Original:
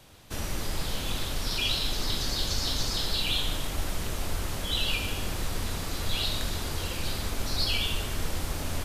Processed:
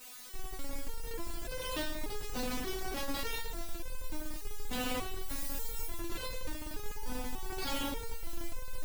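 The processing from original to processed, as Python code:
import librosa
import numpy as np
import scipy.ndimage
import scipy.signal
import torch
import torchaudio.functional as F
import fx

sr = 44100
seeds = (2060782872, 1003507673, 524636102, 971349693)

p1 = fx.low_shelf(x, sr, hz=130.0, db=-5.5)
p2 = fx.schmitt(p1, sr, flips_db=-26.0)
p3 = fx.dmg_tone(p2, sr, hz=880.0, level_db=-39.0, at=(6.96, 7.92), fade=0.02)
p4 = fx.quant_dither(p3, sr, seeds[0], bits=6, dither='triangular')
p5 = p3 + (p4 * 10.0 ** (-9.0 / 20.0))
p6 = fx.high_shelf(p5, sr, hz=6000.0, db=9.5, at=(5.28, 5.87))
p7 = p6 + fx.echo_single(p6, sr, ms=117, db=-10.5, dry=0)
p8 = fx.resonator_held(p7, sr, hz=3.4, low_hz=250.0, high_hz=510.0)
y = p8 * 10.0 ** (9.5 / 20.0)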